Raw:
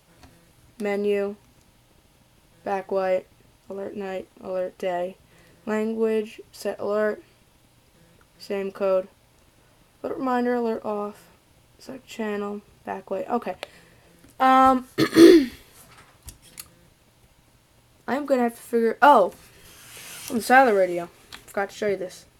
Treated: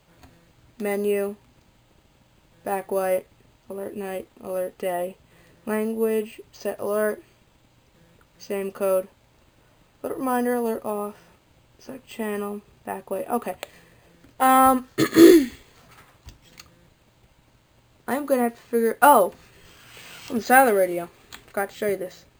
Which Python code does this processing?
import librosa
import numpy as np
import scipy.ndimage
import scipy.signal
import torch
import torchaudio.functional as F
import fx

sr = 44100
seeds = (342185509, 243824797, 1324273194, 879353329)

y = np.repeat(scipy.signal.resample_poly(x, 1, 4), 4)[:len(x)]